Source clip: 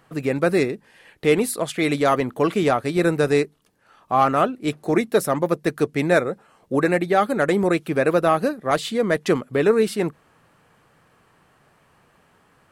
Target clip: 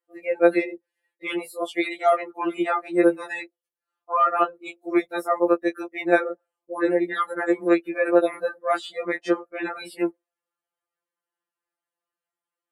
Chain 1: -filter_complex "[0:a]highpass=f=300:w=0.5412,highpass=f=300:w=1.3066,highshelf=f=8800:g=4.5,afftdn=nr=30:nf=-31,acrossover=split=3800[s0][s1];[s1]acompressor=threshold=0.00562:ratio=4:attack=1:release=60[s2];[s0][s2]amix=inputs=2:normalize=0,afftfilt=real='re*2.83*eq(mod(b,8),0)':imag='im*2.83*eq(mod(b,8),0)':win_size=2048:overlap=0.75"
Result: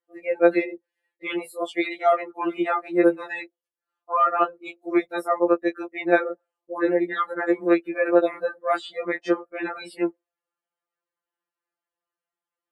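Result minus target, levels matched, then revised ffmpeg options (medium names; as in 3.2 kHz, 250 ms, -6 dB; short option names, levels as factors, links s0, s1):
8 kHz band -4.5 dB
-filter_complex "[0:a]highpass=f=300:w=0.5412,highpass=f=300:w=1.3066,highshelf=f=8800:g=14,afftdn=nr=30:nf=-31,acrossover=split=3800[s0][s1];[s1]acompressor=threshold=0.00562:ratio=4:attack=1:release=60[s2];[s0][s2]amix=inputs=2:normalize=0,afftfilt=real='re*2.83*eq(mod(b,8),0)':imag='im*2.83*eq(mod(b,8),0)':win_size=2048:overlap=0.75"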